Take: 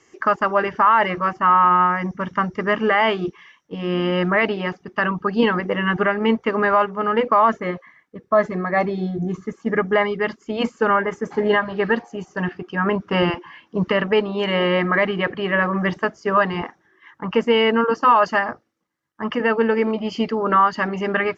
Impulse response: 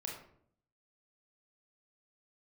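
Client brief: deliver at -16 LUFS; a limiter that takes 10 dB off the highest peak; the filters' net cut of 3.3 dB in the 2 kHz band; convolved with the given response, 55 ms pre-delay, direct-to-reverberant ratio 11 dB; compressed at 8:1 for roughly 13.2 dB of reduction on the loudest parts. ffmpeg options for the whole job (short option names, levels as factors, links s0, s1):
-filter_complex "[0:a]equalizer=f=2000:t=o:g=-4,acompressor=threshold=0.0501:ratio=8,alimiter=limit=0.0668:level=0:latency=1,asplit=2[s0][s1];[1:a]atrim=start_sample=2205,adelay=55[s2];[s1][s2]afir=irnorm=-1:irlink=0,volume=0.299[s3];[s0][s3]amix=inputs=2:normalize=0,volume=6.68"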